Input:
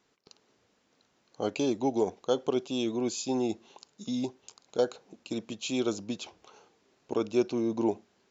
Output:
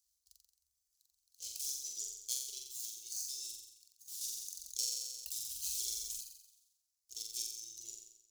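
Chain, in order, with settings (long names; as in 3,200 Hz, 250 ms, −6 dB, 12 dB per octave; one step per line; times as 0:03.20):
running median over 25 samples
high-pass filter 66 Hz 24 dB per octave
reverb reduction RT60 1.8 s
inverse Chebyshev band-stop filter 120–1,800 Hz, stop band 60 dB
flutter between parallel walls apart 7.6 metres, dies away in 0.86 s
0:04.21–0:06.21: envelope flattener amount 50%
level +16.5 dB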